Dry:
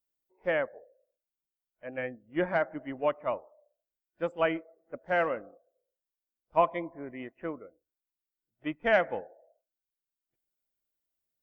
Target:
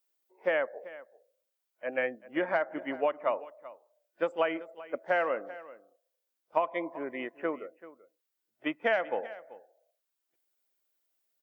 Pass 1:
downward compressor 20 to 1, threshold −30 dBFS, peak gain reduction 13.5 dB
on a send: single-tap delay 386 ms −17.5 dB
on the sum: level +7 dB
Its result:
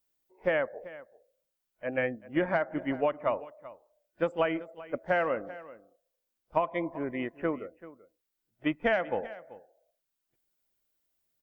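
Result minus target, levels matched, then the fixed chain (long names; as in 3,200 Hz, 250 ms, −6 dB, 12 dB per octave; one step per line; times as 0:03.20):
250 Hz band +3.5 dB
downward compressor 20 to 1, threshold −30 dBFS, peak gain reduction 13.5 dB
high-pass filter 350 Hz 12 dB per octave
on a send: single-tap delay 386 ms −17.5 dB
on the sum: level +7 dB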